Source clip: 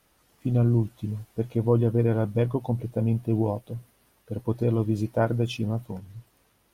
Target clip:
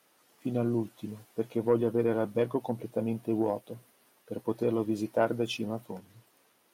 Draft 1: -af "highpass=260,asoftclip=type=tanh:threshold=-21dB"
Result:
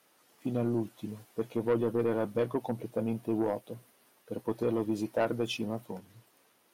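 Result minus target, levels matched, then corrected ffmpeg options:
soft clip: distortion +9 dB
-af "highpass=260,asoftclip=type=tanh:threshold=-14dB"

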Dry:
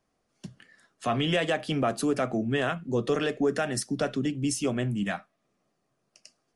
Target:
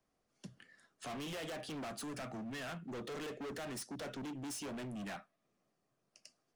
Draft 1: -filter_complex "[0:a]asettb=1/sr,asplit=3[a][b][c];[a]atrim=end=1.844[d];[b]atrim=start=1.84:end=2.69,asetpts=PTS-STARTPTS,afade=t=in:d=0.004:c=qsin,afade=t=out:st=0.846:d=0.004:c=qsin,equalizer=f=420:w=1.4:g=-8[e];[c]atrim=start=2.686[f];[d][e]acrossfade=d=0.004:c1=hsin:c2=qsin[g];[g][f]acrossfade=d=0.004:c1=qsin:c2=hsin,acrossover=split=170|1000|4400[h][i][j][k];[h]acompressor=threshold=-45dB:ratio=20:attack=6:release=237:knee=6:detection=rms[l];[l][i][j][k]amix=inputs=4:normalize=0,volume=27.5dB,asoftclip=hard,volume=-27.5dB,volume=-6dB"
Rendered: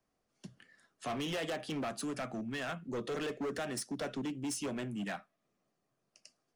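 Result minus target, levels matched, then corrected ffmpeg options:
overloaded stage: distortion -5 dB
-filter_complex "[0:a]asettb=1/sr,asplit=3[a][b][c];[a]atrim=end=1.844[d];[b]atrim=start=1.84:end=2.69,asetpts=PTS-STARTPTS,afade=t=in:d=0.004:c=qsin,afade=t=out:st=0.846:d=0.004:c=qsin,equalizer=f=420:w=1.4:g=-8[e];[c]atrim=start=2.686[f];[d][e]acrossfade=d=0.004:c1=hsin:c2=qsin[g];[g][f]acrossfade=d=0.004:c1=qsin:c2=hsin,acrossover=split=170|1000|4400[h][i][j][k];[h]acompressor=threshold=-45dB:ratio=20:attack=6:release=237:knee=6:detection=rms[l];[l][i][j][k]amix=inputs=4:normalize=0,volume=35.5dB,asoftclip=hard,volume=-35.5dB,volume=-6dB"

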